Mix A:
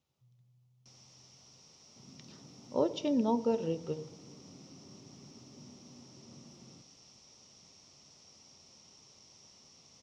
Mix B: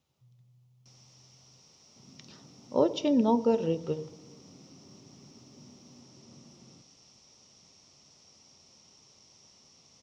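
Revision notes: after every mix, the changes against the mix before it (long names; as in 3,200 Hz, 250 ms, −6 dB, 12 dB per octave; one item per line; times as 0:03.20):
speech +5.0 dB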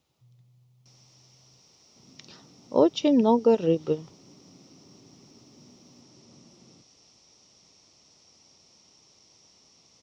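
speech +4.0 dB
reverb: off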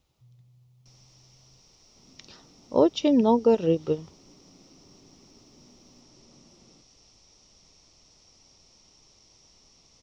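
second sound: add high-pass filter 220 Hz 6 dB per octave
master: remove high-pass filter 110 Hz 12 dB per octave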